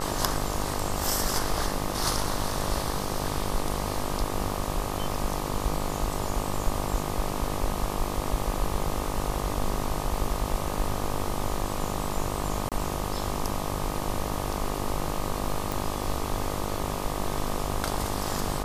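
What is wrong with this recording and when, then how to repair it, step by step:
buzz 50 Hz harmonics 25 -33 dBFS
12.69–12.72 s: dropout 27 ms
15.72 s: pop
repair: de-click; de-hum 50 Hz, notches 25; interpolate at 12.69 s, 27 ms

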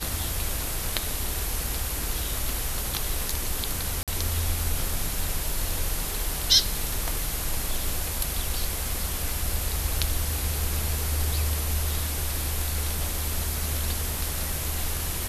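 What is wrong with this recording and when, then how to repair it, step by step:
4.03–4.08 s: dropout 47 ms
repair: interpolate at 4.03 s, 47 ms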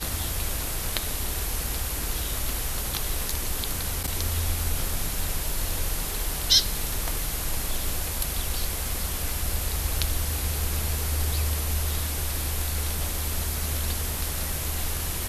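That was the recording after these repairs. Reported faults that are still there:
nothing left

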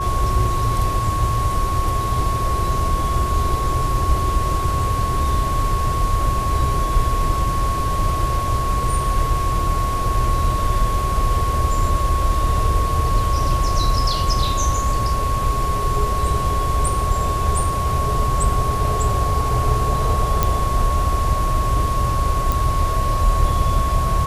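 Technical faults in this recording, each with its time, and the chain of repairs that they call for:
whine 1.1 kHz -22 dBFS
20.43 s: pop
22.52 s: pop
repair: de-click; band-stop 1.1 kHz, Q 30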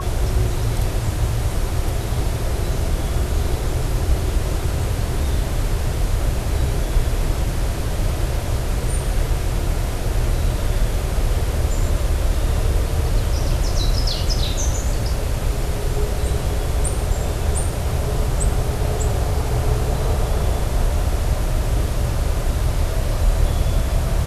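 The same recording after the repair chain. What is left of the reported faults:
nothing left

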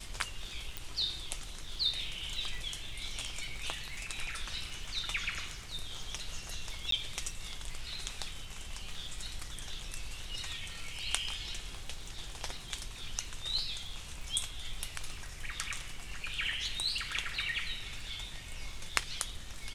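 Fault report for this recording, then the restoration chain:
crackle 23 per s -42 dBFS
0.77 s: pop
6.91–6.92 s: dropout 13 ms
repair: de-click; interpolate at 6.91 s, 13 ms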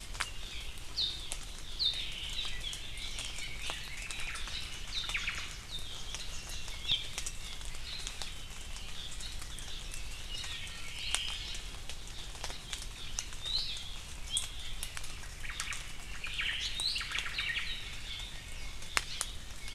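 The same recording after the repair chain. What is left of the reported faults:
0.77 s: pop

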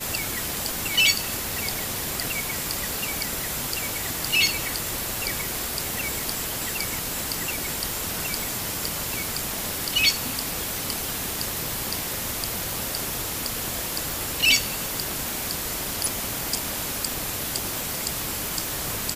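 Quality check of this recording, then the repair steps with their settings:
crackle 20 per s -33 dBFS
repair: de-click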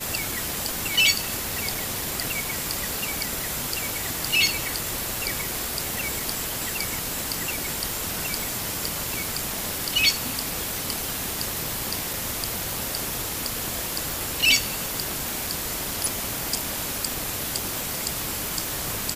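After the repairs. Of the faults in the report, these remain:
nothing left

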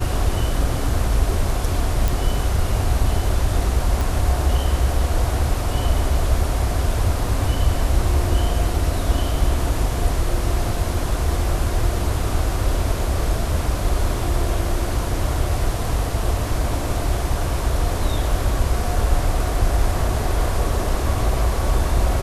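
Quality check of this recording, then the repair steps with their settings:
2.08 s: pop
4.01 s: pop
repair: de-click

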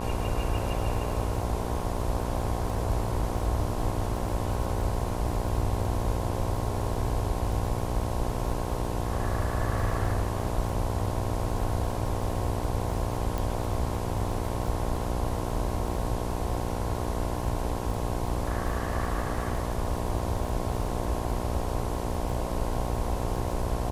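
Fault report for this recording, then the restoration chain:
buzz 60 Hz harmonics 18 -33 dBFS
crackle 48 per s -37 dBFS
13.38 s: pop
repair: de-click; de-hum 60 Hz, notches 18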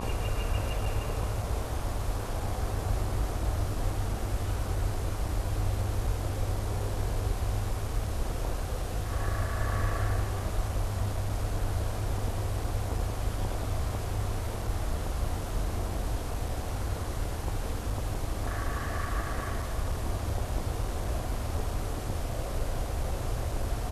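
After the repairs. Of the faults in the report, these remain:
nothing left

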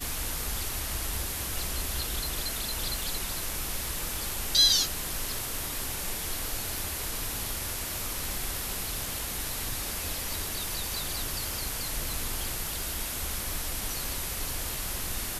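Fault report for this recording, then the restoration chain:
3.03 s: pop
6.78 s: pop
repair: de-click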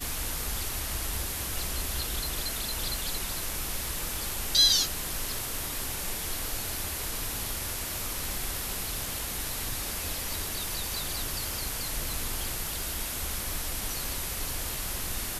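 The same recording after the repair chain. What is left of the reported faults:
6.78 s: pop

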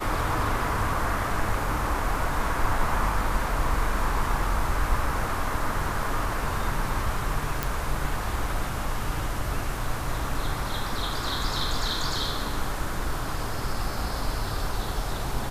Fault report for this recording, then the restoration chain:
7.63 s: pop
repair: de-click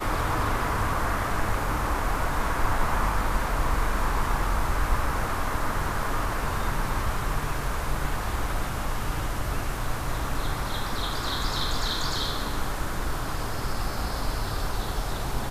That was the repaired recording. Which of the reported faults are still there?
nothing left

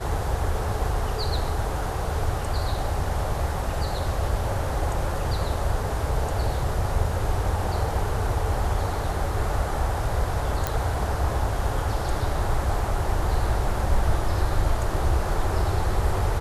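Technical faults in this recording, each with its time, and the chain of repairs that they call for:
10.67 s: pop -9 dBFS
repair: de-click

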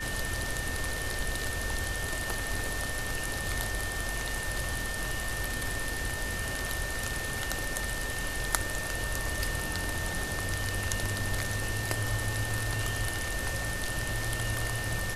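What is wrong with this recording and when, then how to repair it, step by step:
whine 1.8 kHz -36 dBFS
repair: band-stop 1.8 kHz, Q 30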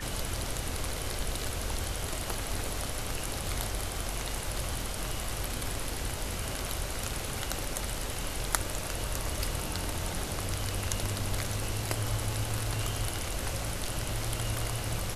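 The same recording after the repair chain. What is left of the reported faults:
nothing left

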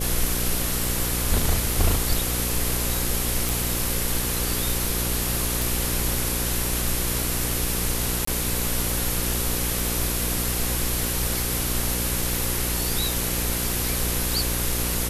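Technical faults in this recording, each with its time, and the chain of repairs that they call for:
buzz 60 Hz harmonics 9 -29 dBFS
3.49 s: pop
5.62 s: pop
8.25–8.27 s: dropout 24 ms
12.36 s: pop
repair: de-click; de-hum 60 Hz, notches 9; interpolate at 8.25 s, 24 ms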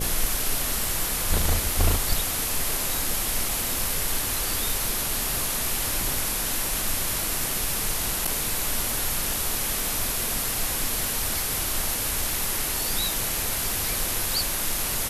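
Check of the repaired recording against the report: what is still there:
nothing left

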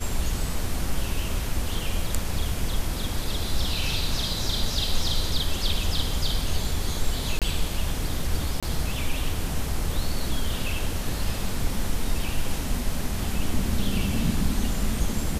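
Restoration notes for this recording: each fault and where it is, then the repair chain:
7.39–7.42 s: dropout 27 ms
8.60–8.63 s: dropout 26 ms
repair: interpolate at 7.39 s, 27 ms; interpolate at 8.60 s, 26 ms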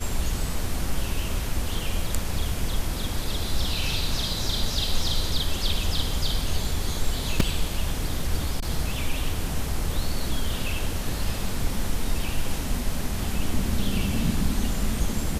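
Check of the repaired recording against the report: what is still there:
nothing left

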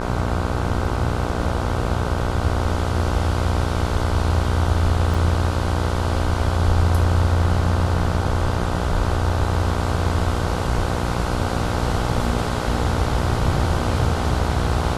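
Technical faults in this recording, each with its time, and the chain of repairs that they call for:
buzz 60 Hz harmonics 26 -25 dBFS
5.14 s: dropout 5 ms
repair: de-hum 60 Hz, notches 26; interpolate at 5.14 s, 5 ms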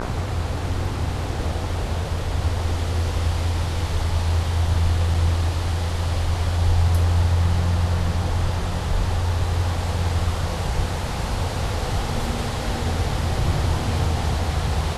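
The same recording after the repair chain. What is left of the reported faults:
nothing left

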